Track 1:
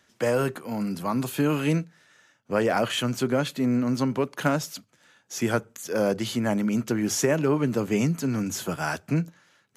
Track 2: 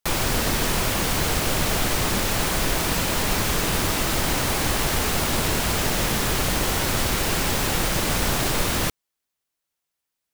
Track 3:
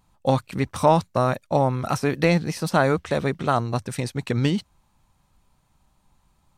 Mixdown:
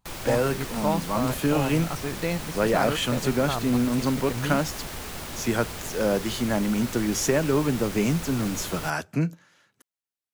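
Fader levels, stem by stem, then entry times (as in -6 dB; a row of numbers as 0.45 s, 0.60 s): 0.0 dB, -13.0 dB, -9.0 dB; 0.05 s, 0.00 s, 0.00 s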